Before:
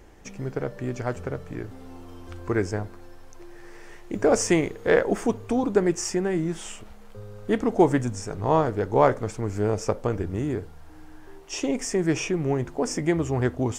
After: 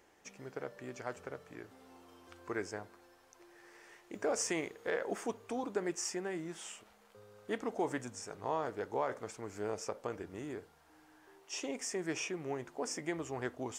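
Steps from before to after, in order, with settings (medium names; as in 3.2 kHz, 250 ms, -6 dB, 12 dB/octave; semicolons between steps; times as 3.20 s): high-pass 620 Hz 6 dB/octave; peak limiter -15.5 dBFS, peak gain reduction 8.5 dB; trim -8 dB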